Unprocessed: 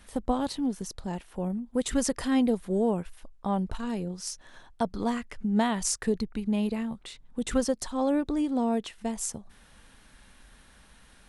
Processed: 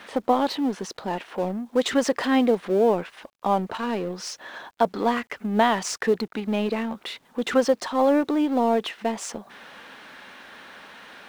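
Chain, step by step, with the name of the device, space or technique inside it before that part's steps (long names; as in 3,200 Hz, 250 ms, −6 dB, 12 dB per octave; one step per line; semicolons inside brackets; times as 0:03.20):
phone line with mismatched companding (band-pass filter 360–3,300 Hz; mu-law and A-law mismatch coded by mu)
0:01.27–0:01.93: dynamic equaliser 5,800 Hz, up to +4 dB, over −51 dBFS, Q 0.74
level +8.5 dB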